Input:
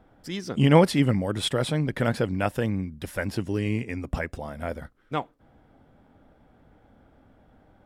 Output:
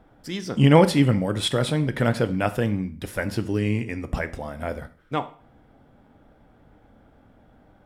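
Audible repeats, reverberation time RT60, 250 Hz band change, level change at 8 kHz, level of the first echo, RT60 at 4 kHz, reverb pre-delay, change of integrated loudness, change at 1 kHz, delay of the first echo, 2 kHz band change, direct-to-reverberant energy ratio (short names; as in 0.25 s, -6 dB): none, 0.50 s, +2.5 dB, +2.5 dB, none, 0.45 s, 5 ms, +2.5 dB, +2.5 dB, none, +2.5 dB, 11.0 dB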